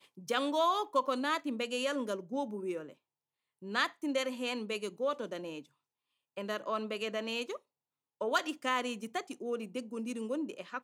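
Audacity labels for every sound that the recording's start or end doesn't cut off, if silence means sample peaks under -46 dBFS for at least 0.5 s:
3.620000	5.620000	sound
6.370000	7.570000	sound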